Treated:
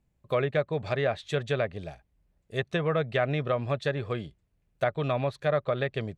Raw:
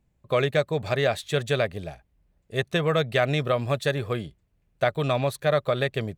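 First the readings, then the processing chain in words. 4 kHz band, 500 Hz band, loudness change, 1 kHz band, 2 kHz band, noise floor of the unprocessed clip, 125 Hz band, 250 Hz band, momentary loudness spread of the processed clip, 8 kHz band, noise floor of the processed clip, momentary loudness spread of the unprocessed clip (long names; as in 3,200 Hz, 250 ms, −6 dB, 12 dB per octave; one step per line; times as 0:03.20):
−8.0 dB, −3.5 dB, −4.0 dB, −3.5 dB, −4.5 dB, −70 dBFS, −3.5 dB, −3.5 dB, 8 LU, below −10 dB, −73 dBFS, 8 LU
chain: treble cut that deepens with the level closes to 2,200 Hz, closed at −19 dBFS
level −3.5 dB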